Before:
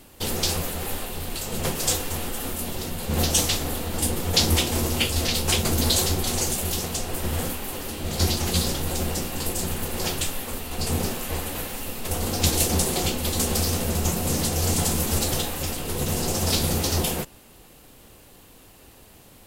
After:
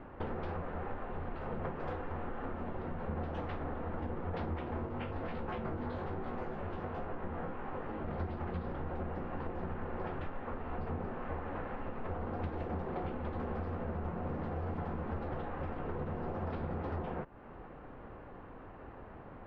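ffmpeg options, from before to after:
-filter_complex "[0:a]asplit=3[a][b][c];[a]afade=t=out:st=4.85:d=0.02[d];[b]flanger=delay=17.5:depth=2.7:speed=1.1,afade=t=in:st=4.85:d=0.02,afade=t=out:st=8.07:d=0.02[e];[c]afade=t=in:st=8.07:d=0.02[f];[d][e][f]amix=inputs=3:normalize=0,lowpass=f=1.5k:w=0.5412,lowpass=f=1.5k:w=1.3066,tiltshelf=f=760:g=-3.5,acompressor=threshold=-41dB:ratio=5,volume=4.5dB"

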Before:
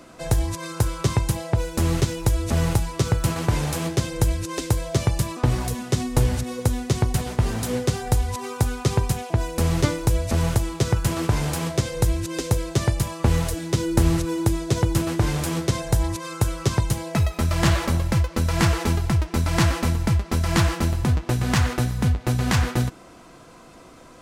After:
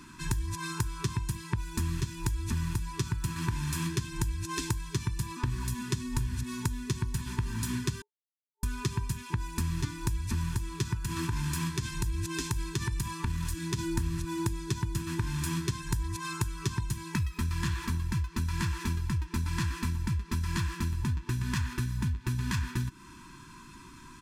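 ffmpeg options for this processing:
-filter_complex "[0:a]asettb=1/sr,asplit=3[a][b][c];[a]atrim=end=10.964[d];[b]atrim=start=10.96:end=13.79,asetpts=PTS-STARTPTS,afade=t=in:d=0.004:c=qsin,afade=t=out:st=2.826:d=0.004:c=qsin,acompressor=threshold=-20dB:ratio=6:attack=3.2:release=140:knee=1:detection=peak[e];[c]atrim=start=13.786[f];[d][e]acrossfade=d=0.004:c1=hsin:c2=qsin[g];[g][f]acrossfade=d=0.004:c1=qsin:c2=hsin,asplit=3[h][i][j];[h]atrim=end=8.02,asetpts=PTS-STARTPTS,afade=t=out:st=8.016:d=0.004:c=hsin[k];[i]atrim=start=8.02:end=8.63,asetpts=PTS-STARTPTS,volume=0[l];[j]atrim=start=8.63,asetpts=PTS-STARTPTS,afade=t=in:d=0.004:c=hsin[m];[k][l][m]concat=n=3:v=0:a=1,afftfilt=real='re*(1-between(b*sr/4096,410,890))':imag='im*(1-between(b*sr/4096,410,890))':win_size=4096:overlap=0.75,aecho=1:1:1.2:0.49,acompressor=threshold=-26dB:ratio=6,volume=-2dB"

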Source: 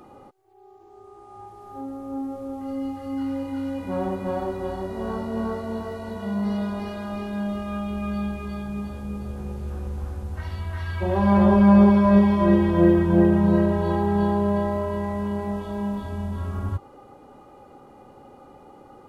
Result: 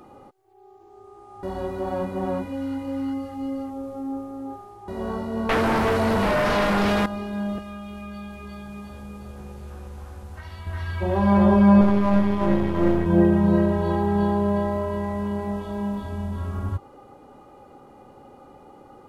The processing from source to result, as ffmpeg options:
-filter_complex "[0:a]asettb=1/sr,asplit=3[a][b][c];[a]atrim=end=5.494[d];[b]atrim=start=5.49:end=7.06,asetpts=PTS-STARTPTS,afade=t=in:d=0.004:c=qsin,afade=t=out:st=1.566:d=0.004:c=qsin,aeval=exprs='0.133*sin(PI/2*4.47*val(0)/0.133)':c=same[e];[c]atrim=start=7.056[f];[d][e]acrossfade=d=0.004:c1=hsin:c2=qsin[g];[g][f]acrossfade=d=0.004:c1=qsin:c2=hsin,asettb=1/sr,asplit=3[h][i][j];[h]atrim=end=7.584[k];[i]atrim=start=7.58:end=10.67,asetpts=PTS-STARTPTS,afade=t=in:d=0.004:c=qsin,afade=t=out:st=3.086:d=0.004:c=qsin,acrossover=split=550|1600[l][m][n];[l]acompressor=threshold=-37dB:ratio=4[o];[m]acompressor=threshold=-46dB:ratio=4[p];[n]acompressor=threshold=-47dB:ratio=4[q];[o][p][q]amix=inputs=3:normalize=0[r];[j]atrim=start=10.666[s];[k][r]acrossfade=d=0.004:c1=hsin:c2=qsin[t];[t][s]acrossfade=d=0.004:c1=qsin:c2=hsin,asettb=1/sr,asplit=3[u][v][w];[u]atrim=end=11.814[x];[v]atrim=start=11.81:end=13.06,asetpts=PTS-STARTPTS,afade=t=in:d=0.004:c=qsin,afade=t=out:st=1.246:d=0.004:c=qsin,aeval=exprs='if(lt(val(0),0),0.251*val(0),val(0))':c=same[y];[w]atrim=start=13.056[z];[x][y]acrossfade=d=0.004:c1=hsin:c2=qsin[aa];[aa][z]acrossfade=d=0.004:c1=qsin:c2=hsin,asplit=3[ab][ac][ad];[ab]atrim=end=1.432[ae];[ac]atrim=start=1.428:end=4.882,asetpts=PTS-STARTPTS,areverse[af];[ad]atrim=start=4.878[ag];[ae][af]acrossfade=d=0.004:c1=hsin:c2=hsin[ah];[ah][ag]acrossfade=d=0.004:c1=hsin:c2=hsin"

